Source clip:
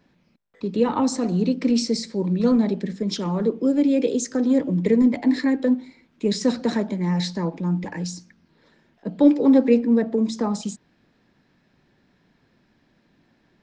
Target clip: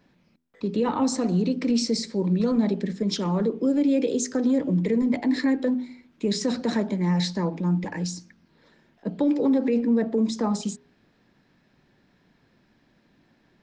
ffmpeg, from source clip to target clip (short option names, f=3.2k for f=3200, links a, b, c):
-af "alimiter=limit=-15dB:level=0:latency=1:release=48,bandreject=f=82.43:t=h:w=4,bandreject=f=164.86:t=h:w=4,bandreject=f=247.29:t=h:w=4,bandreject=f=329.72:t=h:w=4,bandreject=f=412.15:t=h:w=4"